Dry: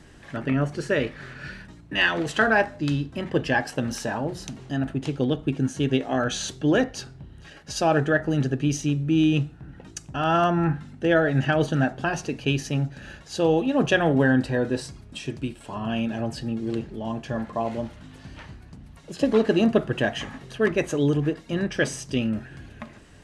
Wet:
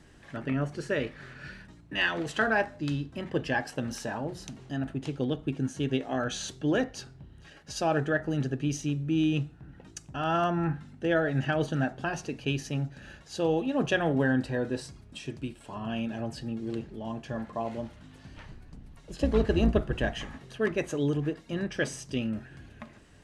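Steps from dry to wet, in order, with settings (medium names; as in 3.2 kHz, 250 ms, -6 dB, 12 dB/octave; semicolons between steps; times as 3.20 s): 18.35–20.37 s: octave divider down 2 oct, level +1 dB; trim -6 dB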